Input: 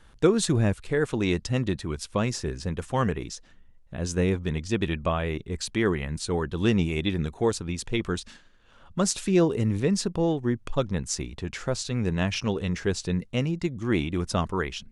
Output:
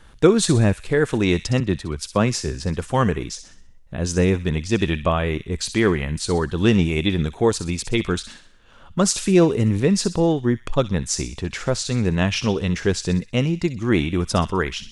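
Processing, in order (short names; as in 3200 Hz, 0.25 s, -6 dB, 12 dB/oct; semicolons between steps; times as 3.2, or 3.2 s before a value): thin delay 63 ms, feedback 44%, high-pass 2400 Hz, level -10 dB; 1.6–2.54 three-band expander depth 70%; gain +6 dB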